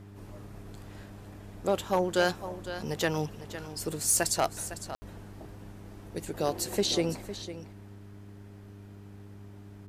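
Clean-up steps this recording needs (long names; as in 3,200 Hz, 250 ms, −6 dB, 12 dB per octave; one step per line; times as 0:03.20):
clipped peaks rebuilt −17 dBFS
hum removal 100.8 Hz, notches 4
ambience match 0:04.95–0:05.02
echo removal 506 ms −13 dB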